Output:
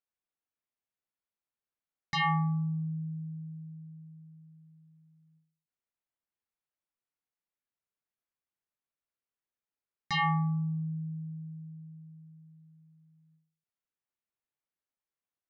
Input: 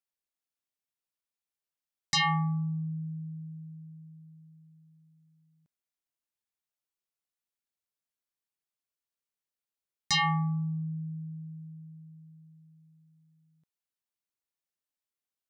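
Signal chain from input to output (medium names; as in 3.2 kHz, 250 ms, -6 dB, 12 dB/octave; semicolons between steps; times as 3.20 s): low-pass 2.3 kHz 12 dB/octave; endings held to a fixed fall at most 120 dB/s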